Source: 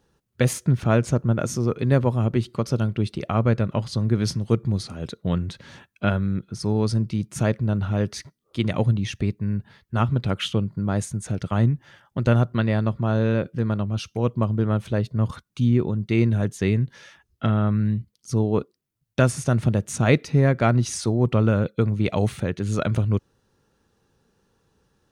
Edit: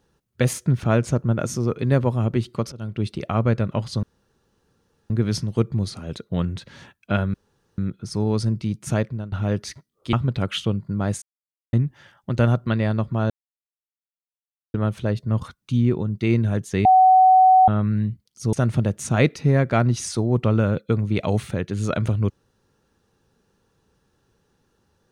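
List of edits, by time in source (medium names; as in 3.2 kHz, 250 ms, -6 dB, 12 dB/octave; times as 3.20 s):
2.72–3.06 s: fade in, from -23 dB
4.03 s: insert room tone 1.07 s
6.27 s: insert room tone 0.44 s
7.45–7.81 s: fade out, to -17 dB
8.62–10.01 s: delete
11.10–11.61 s: mute
13.18–14.62 s: mute
16.73–17.56 s: bleep 750 Hz -9.5 dBFS
18.41–19.42 s: delete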